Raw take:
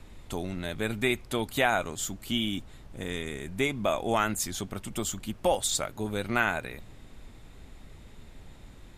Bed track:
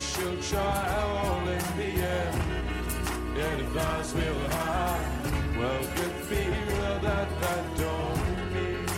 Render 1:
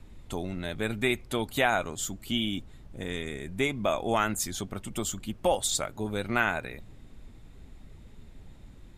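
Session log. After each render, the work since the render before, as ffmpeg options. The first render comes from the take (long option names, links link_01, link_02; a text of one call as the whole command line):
ffmpeg -i in.wav -af "afftdn=noise_reduction=6:noise_floor=-50" out.wav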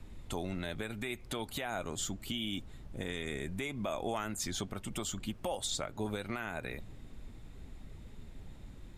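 ffmpeg -i in.wav -filter_complex "[0:a]acrossover=split=570|6700[link_01][link_02][link_03];[link_01]acompressor=threshold=-34dB:ratio=4[link_04];[link_02]acompressor=threshold=-32dB:ratio=4[link_05];[link_03]acompressor=threshold=-47dB:ratio=4[link_06];[link_04][link_05][link_06]amix=inputs=3:normalize=0,alimiter=level_in=0.5dB:limit=-24dB:level=0:latency=1:release=223,volume=-0.5dB" out.wav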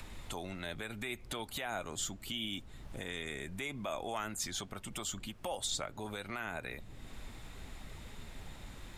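ffmpeg -i in.wav -filter_complex "[0:a]acrossover=split=640[link_01][link_02];[link_01]alimiter=level_in=12.5dB:limit=-24dB:level=0:latency=1:release=258,volume=-12.5dB[link_03];[link_02]acompressor=mode=upward:threshold=-45dB:ratio=2.5[link_04];[link_03][link_04]amix=inputs=2:normalize=0" out.wav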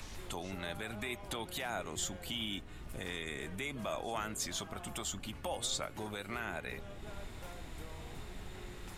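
ffmpeg -i in.wav -i bed.wav -filter_complex "[1:a]volume=-22dB[link_01];[0:a][link_01]amix=inputs=2:normalize=0" out.wav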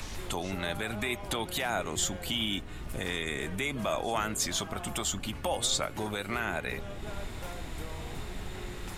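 ffmpeg -i in.wav -af "volume=7.5dB" out.wav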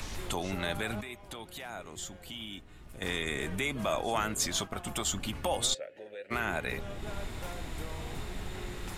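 ffmpeg -i in.wav -filter_complex "[0:a]asplit=3[link_01][link_02][link_03];[link_01]afade=type=out:start_time=3.72:duration=0.02[link_04];[link_02]agate=range=-33dB:threshold=-34dB:ratio=3:release=100:detection=peak,afade=type=in:start_time=3.72:duration=0.02,afade=type=out:start_time=5.06:duration=0.02[link_05];[link_03]afade=type=in:start_time=5.06:duration=0.02[link_06];[link_04][link_05][link_06]amix=inputs=3:normalize=0,asplit=3[link_07][link_08][link_09];[link_07]afade=type=out:start_time=5.73:duration=0.02[link_10];[link_08]asplit=3[link_11][link_12][link_13];[link_11]bandpass=frequency=530:width_type=q:width=8,volume=0dB[link_14];[link_12]bandpass=frequency=1840:width_type=q:width=8,volume=-6dB[link_15];[link_13]bandpass=frequency=2480:width_type=q:width=8,volume=-9dB[link_16];[link_14][link_15][link_16]amix=inputs=3:normalize=0,afade=type=in:start_time=5.73:duration=0.02,afade=type=out:start_time=6.3:duration=0.02[link_17];[link_09]afade=type=in:start_time=6.3:duration=0.02[link_18];[link_10][link_17][link_18]amix=inputs=3:normalize=0,asplit=3[link_19][link_20][link_21];[link_19]atrim=end=1.012[link_22];[link_20]atrim=start=1.008:end=3.022,asetpts=PTS-STARTPTS,volume=-11dB[link_23];[link_21]atrim=start=3.018[link_24];[link_22][link_23]acrossfade=duration=0.004:curve1=hsin:curve2=hsin[link_25];[link_25][link_24]acrossfade=duration=0.004:curve1=hsin:curve2=hsin" out.wav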